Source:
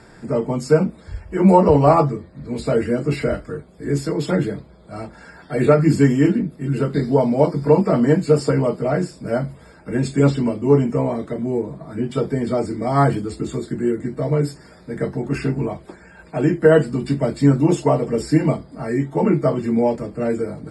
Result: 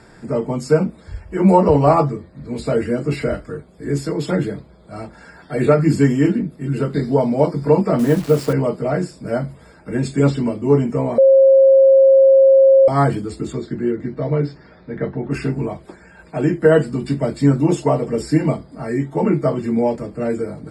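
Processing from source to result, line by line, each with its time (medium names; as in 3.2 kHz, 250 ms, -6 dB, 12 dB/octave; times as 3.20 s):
7.99–8.53 s: send-on-delta sampling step -29 dBFS
11.18–12.88 s: bleep 538 Hz -6.5 dBFS
13.52–15.30 s: low-pass 6.3 kHz -> 3.3 kHz 24 dB/octave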